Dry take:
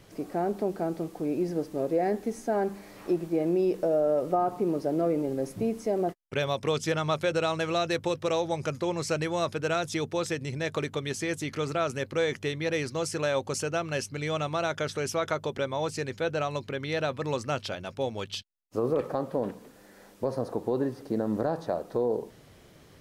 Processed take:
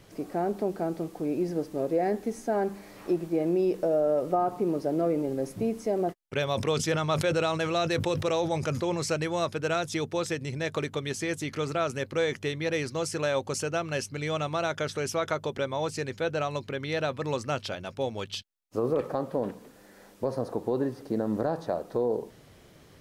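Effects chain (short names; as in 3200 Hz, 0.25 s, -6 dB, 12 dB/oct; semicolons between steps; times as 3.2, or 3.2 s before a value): 6.51–9.1 sustainer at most 58 dB/s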